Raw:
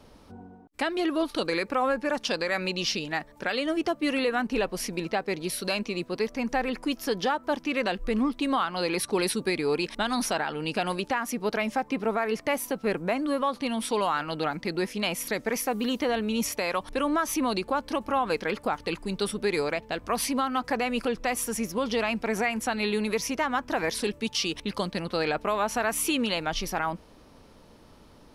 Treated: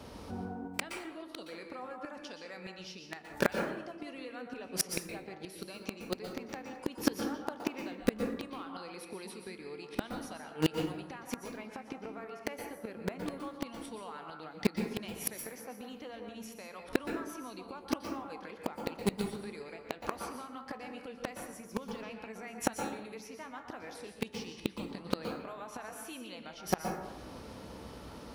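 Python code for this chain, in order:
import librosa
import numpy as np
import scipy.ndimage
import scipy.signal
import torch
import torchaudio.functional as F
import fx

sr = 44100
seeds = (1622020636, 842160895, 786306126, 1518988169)

p1 = scipy.signal.sosfilt(scipy.signal.butter(4, 43.0, 'highpass', fs=sr, output='sos'), x)
p2 = fx.comb_fb(p1, sr, f0_hz=63.0, decay_s=0.35, harmonics='all', damping=0.0, mix_pct=50)
p3 = fx.gate_flip(p2, sr, shuts_db=-26.0, range_db=-25)
p4 = fx.quant_dither(p3, sr, seeds[0], bits=6, dither='none')
p5 = p3 + (p4 * 10.0 ** (-5.0 / 20.0))
p6 = fx.rev_plate(p5, sr, seeds[1], rt60_s=0.93, hf_ratio=0.45, predelay_ms=110, drr_db=3.5)
y = p6 * 10.0 ** (9.0 / 20.0)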